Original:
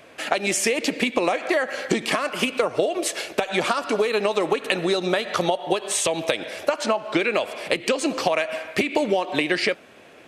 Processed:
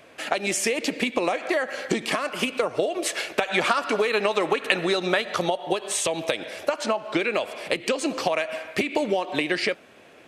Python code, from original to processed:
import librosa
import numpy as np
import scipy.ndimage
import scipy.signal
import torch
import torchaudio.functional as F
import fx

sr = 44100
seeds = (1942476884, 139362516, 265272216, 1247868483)

y = fx.peak_eq(x, sr, hz=1800.0, db=5.5, octaves=1.9, at=(3.04, 5.22))
y = y * librosa.db_to_amplitude(-2.5)